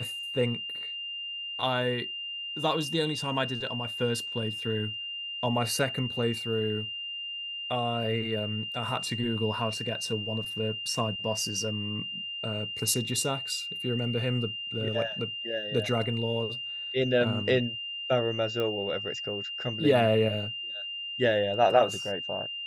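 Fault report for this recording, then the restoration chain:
whine 2.8 kHz -34 dBFS
18.60 s: pop -19 dBFS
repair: de-click; band-stop 2.8 kHz, Q 30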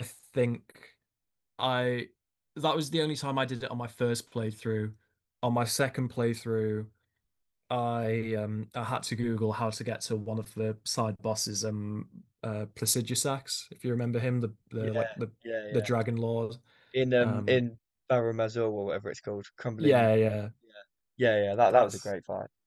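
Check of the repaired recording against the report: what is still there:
nothing left

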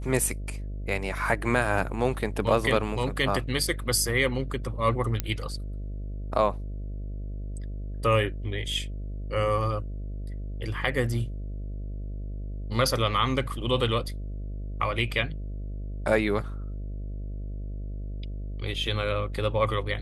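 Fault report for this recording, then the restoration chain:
buzz 50 Hz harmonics 13 -34 dBFS
5.20 s: pop -11 dBFS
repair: de-click; de-hum 50 Hz, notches 13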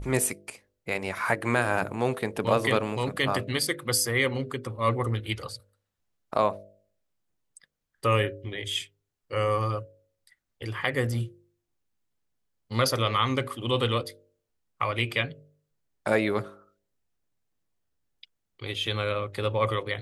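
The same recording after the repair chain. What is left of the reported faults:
nothing left

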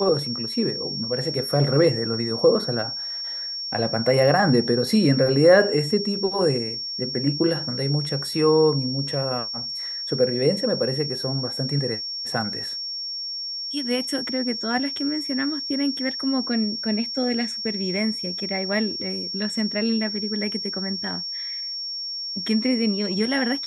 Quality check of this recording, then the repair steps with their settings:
whine 5.5 kHz -28 dBFS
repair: band-stop 5.5 kHz, Q 30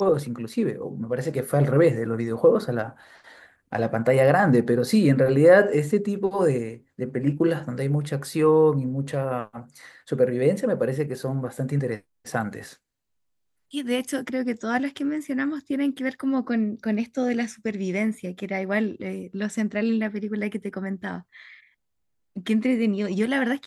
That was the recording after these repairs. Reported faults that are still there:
nothing left

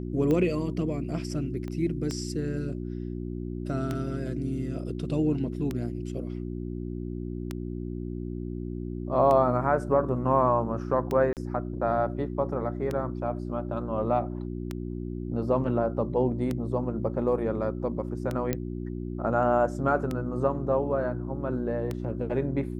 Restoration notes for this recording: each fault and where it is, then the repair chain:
hum 60 Hz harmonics 6 -34 dBFS
tick 33 1/3 rpm -17 dBFS
1.68 s: pop -25 dBFS
11.33–11.37 s: dropout 38 ms
18.53 s: pop -13 dBFS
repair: de-click; de-hum 60 Hz, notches 6; interpolate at 11.33 s, 38 ms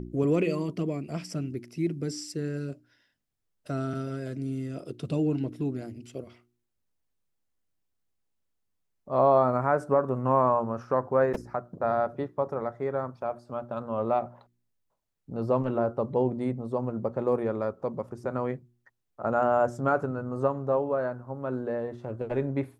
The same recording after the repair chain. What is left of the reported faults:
1.68 s: pop

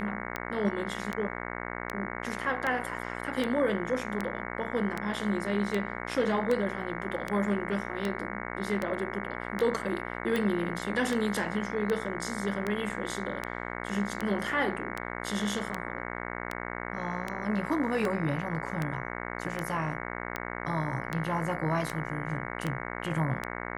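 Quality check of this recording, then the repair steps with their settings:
buzz 60 Hz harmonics 37 -37 dBFS
tick 78 rpm -17 dBFS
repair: de-click; de-hum 60 Hz, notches 37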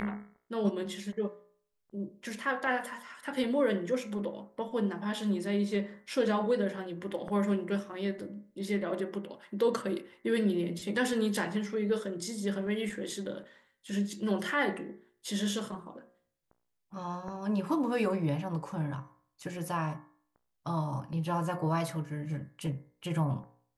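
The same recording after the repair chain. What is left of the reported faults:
nothing left

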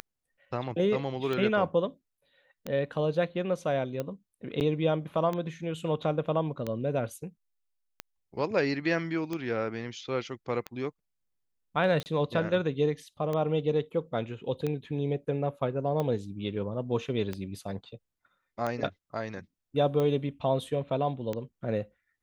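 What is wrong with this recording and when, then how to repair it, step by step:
tick 45 rpm -19 dBFS
4.60–4.61 s: dropout 9.2 ms
12.03–12.06 s: dropout 29 ms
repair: de-click; interpolate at 4.60 s, 9.2 ms; interpolate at 12.03 s, 29 ms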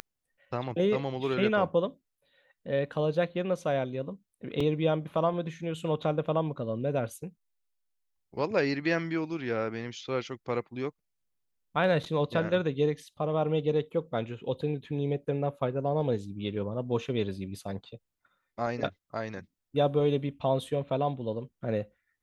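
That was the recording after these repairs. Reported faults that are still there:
nothing left

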